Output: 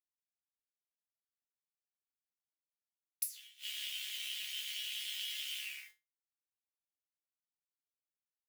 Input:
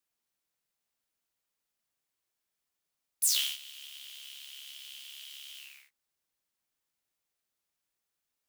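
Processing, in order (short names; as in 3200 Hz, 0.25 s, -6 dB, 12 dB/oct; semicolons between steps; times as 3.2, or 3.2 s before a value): graphic EQ 125/500/2000 Hz +9/+5/+11 dB; bit-crush 11-bit; flipped gate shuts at -19 dBFS, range -31 dB; high shelf 2100 Hz +9.5 dB; resonator 100 Hz, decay 0.24 s, harmonics odd, mix 90%; gain +5 dB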